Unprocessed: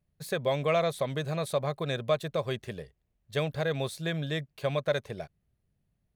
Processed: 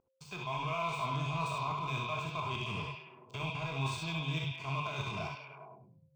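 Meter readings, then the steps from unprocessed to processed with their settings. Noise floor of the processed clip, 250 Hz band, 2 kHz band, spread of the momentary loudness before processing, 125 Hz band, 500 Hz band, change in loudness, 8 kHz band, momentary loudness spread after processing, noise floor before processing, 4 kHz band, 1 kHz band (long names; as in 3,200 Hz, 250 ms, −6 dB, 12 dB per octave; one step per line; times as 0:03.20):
−67 dBFS, −5.5 dB, −2.0 dB, 14 LU, −3.0 dB, −14.5 dB, −5.5 dB, −5.5 dB, 12 LU, −78 dBFS, −2.5 dB, +1.0 dB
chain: spectrum averaged block by block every 50 ms
elliptic band-pass filter 110–8,500 Hz
automatic gain control gain up to 8 dB
brickwall limiter −16.5 dBFS, peak gain reduction 8.5 dB
reversed playback
downward compressor 6 to 1, threshold −35 dBFS, peak gain reduction 13 dB
reversed playback
dead-zone distortion −52 dBFS
thirty-one-band graphic EQ 250 Hz −4 dB, 630 Hz +8 dB, 1,000 Hz +12 dB, 1,600 Hz −5 dB, 2,500 Hz +8 dB, 4,000 Hz +12 dB
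steady tone 530 Hz −56 dBFS
phaser with its sweep stopped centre 2,700 Hz, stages 8
on a send: echo through a band-pass that steps 102 ms, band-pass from 3,600 Hz, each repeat −0.7 octaves, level −1 dB
on the sum: reverb whose tail is shaped and stops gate 90 ms rising, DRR 1.5 dB
level +1.5 dB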